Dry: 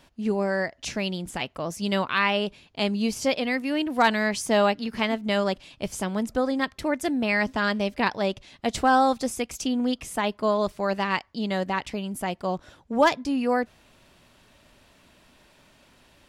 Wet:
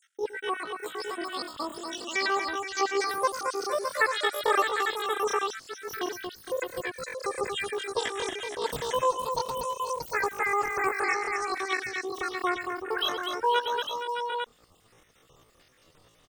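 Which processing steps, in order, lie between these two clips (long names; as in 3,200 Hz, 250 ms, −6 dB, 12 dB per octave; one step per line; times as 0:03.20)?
time-frequency cells dropped at random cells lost 71%
high-shelf EQ 2,300 Hz −3.5 dB
multi-tap delay 105/231/469/615/753/849 ms −13.5/−6/−10/−7.5/−8.5/−6.5 dB
pitch shifter +11.5 semitones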